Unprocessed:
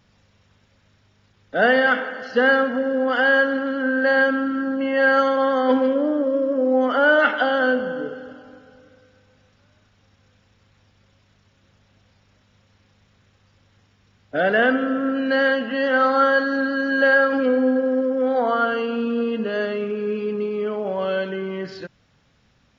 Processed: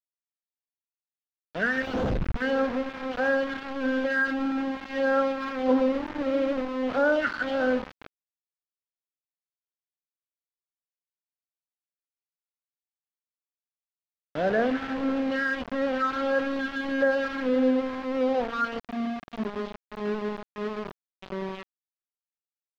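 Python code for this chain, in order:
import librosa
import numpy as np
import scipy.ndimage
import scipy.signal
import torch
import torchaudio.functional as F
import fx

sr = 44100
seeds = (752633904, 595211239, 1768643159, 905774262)

y = fx.schmitt(x, sr, flips_db=-27.0, at=(1.82, 2.42))
y = fx.phaser_stages(y, sr, stages=4, low_hz=590.0, high_hz=3700.0, hz=1.6, feedback_pct=30)
y = fx.spec_box(y, sr, start_s=18.79, length_s=2.44, low_hz=450.0, high_hz=3000.0, gain_db=-24)
y = np.where(np.abs(y) >= 10.0 ** (-24.0 / 20.0), y, 0.0)
y = fx.air_absorb(y, sr, metres=240.0)
y = y * librosa.db_to_amplitude(-4.0)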